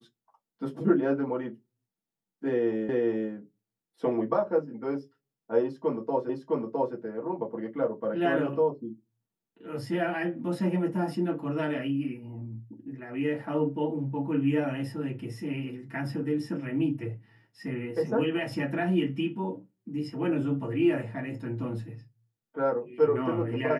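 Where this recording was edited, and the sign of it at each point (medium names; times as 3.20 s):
2.89 s: repeat of the last 0.41 s
6.29 s: repeat of the last 0.66 s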